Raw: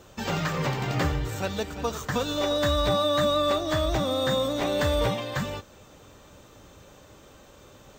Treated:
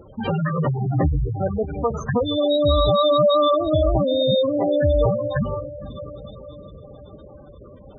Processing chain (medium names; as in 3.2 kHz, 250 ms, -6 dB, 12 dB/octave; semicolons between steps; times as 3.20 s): echo that smears into a reverb 476 ms, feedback 61%, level -14.5 dB; spectral gate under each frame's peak -10 dB strong; trim +8 dB